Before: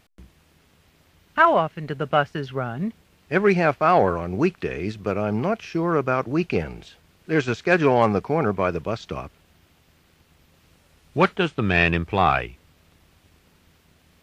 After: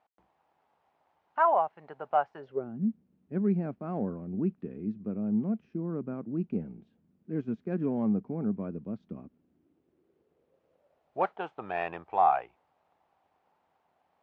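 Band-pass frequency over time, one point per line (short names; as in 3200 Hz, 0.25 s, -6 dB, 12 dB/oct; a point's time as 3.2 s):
band-pass, Q 4
2.36 s 820 Hz
2.76 s 220 Hz
9.12 s 220 Hz
11.4 s 800 Hz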